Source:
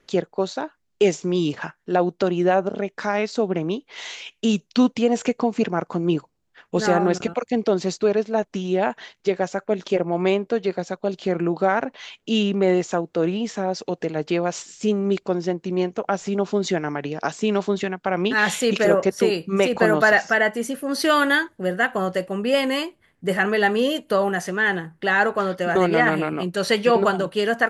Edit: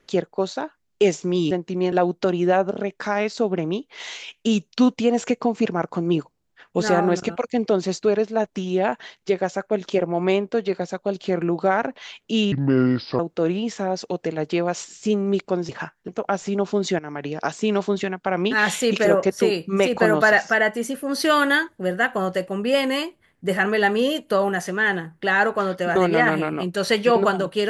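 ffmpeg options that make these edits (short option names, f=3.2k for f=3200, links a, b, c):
-filter_complex "[0:a]asplit=8[a][b][c][d][e][f][g][h];[a]atrim=end=1.512[i];[b]atrim=start=15.468:end=15.882[j];[c]atrim=start=1.898:end=12.504[k];[d]atrim=start=12.5:end=12.97,asetpts=PTS-STARTPTS,asetrate=30870,aresample=44100,atrim=end_sample=29610,asetpts=PTS-STARTPTS[l];[e]atrim=start=12.966:end=15.472[m];[f]atrim=start=1.508:end=1.902[n];[g]atrim=start=15.878:end=16.79,asetpts=PTS-STARTPTS,afade=t=out:st=0.908:d=0.004:c=hsin:silence=0.223872[o];[h]atrim=start=16.79,asetpts=PTS-STARTPTS,afade=t=in:d=0.3:silence=0.223872[p];[i][j]acrossfade=d=0.004:c1=hsin:c2=hsin[q];[q][k]acrossfade=d=0.004:c1=hsin:c2=hsin[r];[r][l]acrossfade=d=0.004:c1=hsin:c2=hsin[s];[s][m]acrossfade=d=0.004:c1=hsin:c2=hsin[t];[t][n]acrossfade=d=0.004:c1=hsin:c2=hsin[u];[o][p]concat=n=2:v=0:a=1[v];[u][v]acrossfade=d=0.004:c1=hsin:c2=hsin"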